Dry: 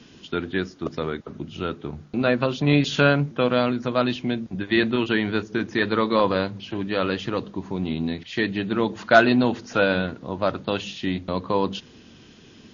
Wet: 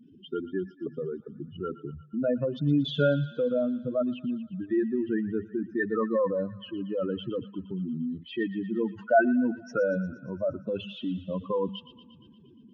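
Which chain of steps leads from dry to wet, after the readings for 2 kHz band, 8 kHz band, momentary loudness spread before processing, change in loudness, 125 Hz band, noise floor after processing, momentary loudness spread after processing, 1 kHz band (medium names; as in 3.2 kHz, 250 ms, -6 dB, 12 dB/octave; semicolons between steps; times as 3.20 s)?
-11.5 dB, no reading, 11 LU, -6.0 dB, -6.5 dB, -55 dBFS, 11 LU, -9.0 dB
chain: spectral contrast enhancement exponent 3.1; feedback echo behind a high-pass 117 ms, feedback 66%, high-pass 1.5 kHz, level -12 dB; trim -5 dB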